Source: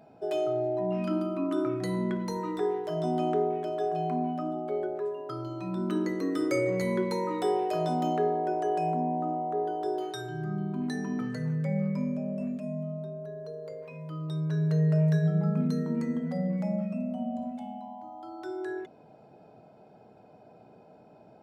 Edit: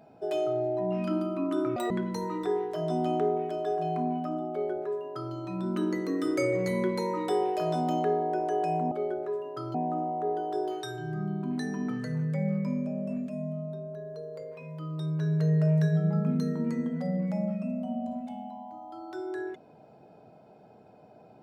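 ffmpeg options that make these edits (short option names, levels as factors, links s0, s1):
-filter_complex "[0:a]asplit=5[s0][s1][s2][s3][s4];[s0]atrim=end=1.764[s5];[s1]atrim=start=1.76:end=2.04,asetpts=PTS-STARTPTS,asetrate=85554,aresample=44100[s6];[s2]atrim=start=2.036:end=9.052[s7];[s3]atrim=start=4.638:end=5.472[s8];[s4]atrim=start=9.048[s9];[s5][s6]acrossfade=d=0.004:c1=hsin:c2=hsin[s10];[s10][s7]acrossfade=d=0.004:c1=hsin:c2=hsin[s11];[s11][s8]acrossfade=d=0.004:c1=hsin:c2=hsin[s12];[s12][s9]acrossfade=d=0.004:c1=hsin:c2=hsin"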